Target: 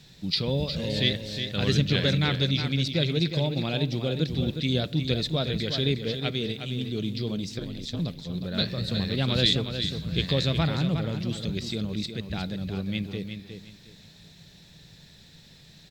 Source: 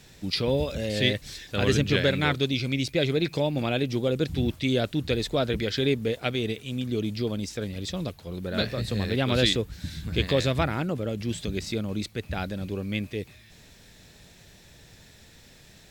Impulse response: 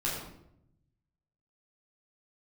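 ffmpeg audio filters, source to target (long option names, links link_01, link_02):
-filter_complex "[0:a]equalizer=frequency=160:width_type=o:width=0.67:gain=11,equalizer=frequency=4000:width_type=o:width=0.67:gain=10,equalizer=frequency=10000:width_type=o:width=0.67:gain=-4,asettb=1/sr,asplit=3[link_01][link_02][link_03];[link_01]atrim=end=7.584[link_04];[link_02]atrim=start=7.58:end=7.99,asetpts=PTS-STARTPTS,afade=type=in:duration=0.004:curve=qsin,afade=type=out:start_time=0.406:duration=0.004:curve=qsin,aeval=exprs='val(0)*sin(2*PI*71*n/s)':channel_layout=same[link_05];[link_03]atrim=start=7.986[link_06];[link_04][link_05]acrossfade=duration=0.004:curve1=hsin:curve2=qsin[link_07];[link_07][link_06]acrossfade=duration=0.004:curve1=qsin:curve2=hsin,aecho=1:1:361|722|1083:0.398|0.0995|0.0249,asplit=2[link_08][link_09];[1:a]atrim=start_sample=2205[link_10];[link_09][link_10]afir=irnorm=-1:irlink=0,volume=-25.5dB[link_11];[link_08][link_11]amix=inputs=2:normalize=0,volume=-5.5dB"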